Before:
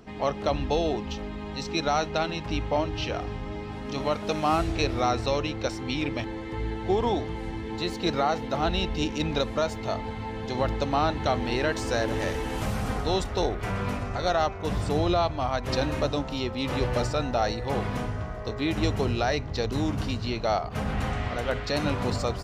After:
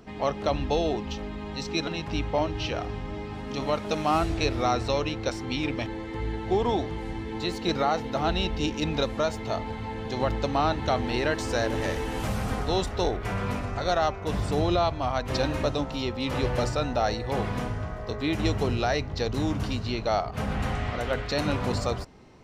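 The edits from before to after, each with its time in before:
0:01.87–0:02.25: remove

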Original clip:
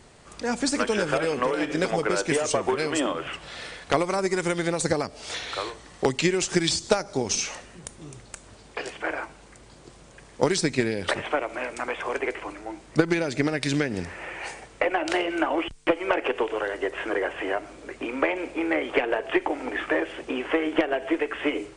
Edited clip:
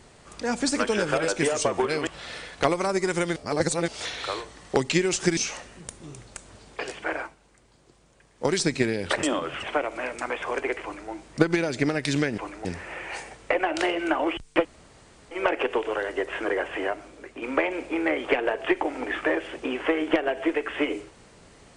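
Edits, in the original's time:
0:01.28–0:02.17: remove
0:02.96–0:03.36: move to 0:11.21
0:04.65–0:05.17: reverse
0:06.66–0:07.35: remove
0:09.16–0:10.52: duck −10 dB, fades 0.17 s
0:12.41–0:12.68: duplicate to 0:13.96
0:15.96: splice in room tone 0.66 s
0:17.46–0:18.07: fade out, to −7.5 dB

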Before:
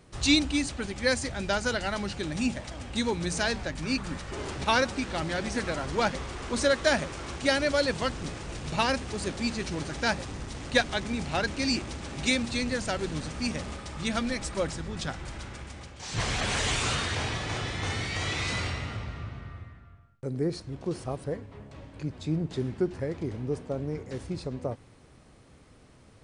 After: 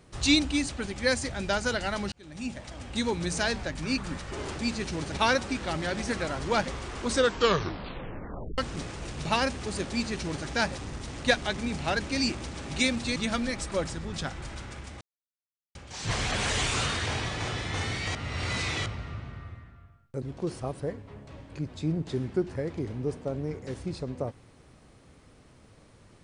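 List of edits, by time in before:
0:02.12–0:03.24: fade in equal-power
0:06.56: tape stop 1.49 s
0:09.38–0:09.91: duplicate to 0:04.59
0:12.63–0:13.99: remove
0:15.84: splice in silence 0.74 s
0:18.24–0:18.95: reverse
0:20.31–0:20.66: remove

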